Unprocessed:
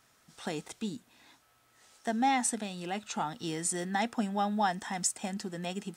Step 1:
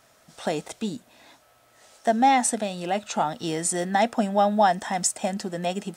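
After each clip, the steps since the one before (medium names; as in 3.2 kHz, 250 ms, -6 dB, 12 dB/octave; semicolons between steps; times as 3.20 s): peaking EQ 610 Hz +10.5 dB 0.53 oct; trim +6 dB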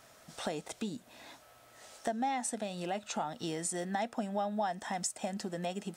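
compression 2.5:1, threshold -38 dBFS, peak gain reduction 15.5 dB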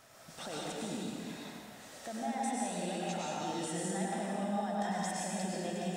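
peak limiter -32.5 dBFS, peak gain reduction 10 dB; reverberation RT60 2.3 s, pre-delay 87 ms, DRR -5 dB; trim -1.5 dB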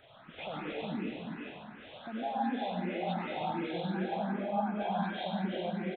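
knee-point frequency compression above 1.2 kHz 1.5:1; resampled via 8 kHz; barber-pole phaser +2.7 Hz; trim +5 dB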